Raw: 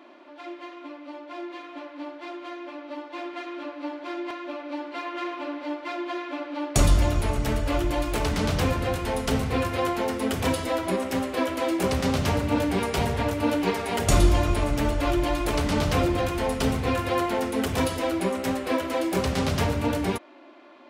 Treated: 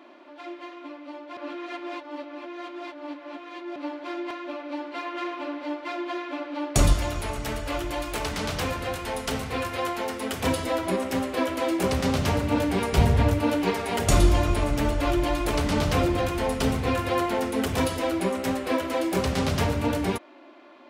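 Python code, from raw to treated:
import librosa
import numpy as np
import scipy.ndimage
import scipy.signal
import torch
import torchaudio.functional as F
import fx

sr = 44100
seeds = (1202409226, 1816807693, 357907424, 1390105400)

y = fx.low_shelf(x, sr, hz=460.0, db=-8.0, at=(6.93, 10.43))
y = fx.low_shelf(y, sr, hz=160.0, db=12.0, at=(12.92, 13.39))
y = fx.edit(y, sr, fx.reverse_span(start_s=1.37, length_s=2.39), tone=tone)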